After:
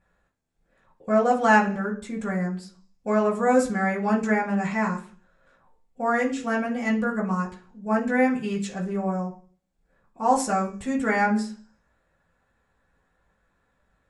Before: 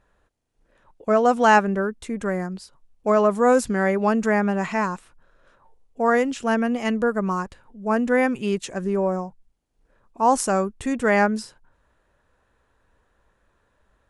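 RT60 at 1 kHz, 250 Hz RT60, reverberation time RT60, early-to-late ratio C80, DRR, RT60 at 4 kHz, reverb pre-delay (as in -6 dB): 0.40 s, 0.60 s, 0.45 s, 16.5 dB, -6.5 dB, 0.50 s, 3 ms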